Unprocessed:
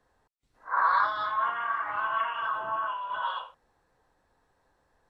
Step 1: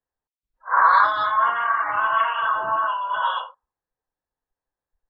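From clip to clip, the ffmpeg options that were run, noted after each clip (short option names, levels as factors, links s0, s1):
-af "afftdn=nr=30:nf=-50,volume=2.66"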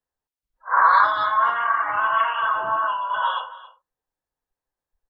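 -af "aecho=1:1:274:0.133"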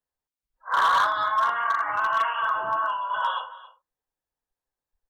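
-af "volume=4.73,asoftclip=hard,volume=0.211,volume=0.708"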